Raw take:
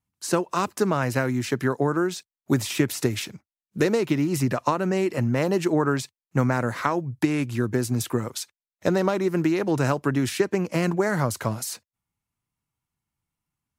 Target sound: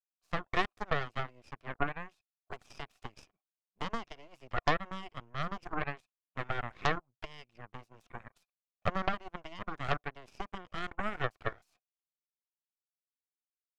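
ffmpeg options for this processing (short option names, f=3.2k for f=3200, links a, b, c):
-filter_complex "[0:a]asplit=3[a][b][c];[a]bandpass=f=730:t=q:w=8,volume=0dB[d];[b]bandpass=f=1.09k:t=q:w=8,volume=-6dB[e];[c]bandpass=f=2.44k:t=q:w=8,volume=-9dB[f];[d][e][f]amix=inputs=3:normalize=0,aeval=exprs='0.141*(cos(1*acos(clip(val(0)/0.141,-1,1)))-cos(1*PI/2))+0.0501*(cos(6*acos(clip(val(0)/0.141,-1,1)))-cos(6*PI/2))+0.0178*(cos(7*acos(clip(val(0)/0.141,-1,1)))-cos(7*PI/2))':c=same"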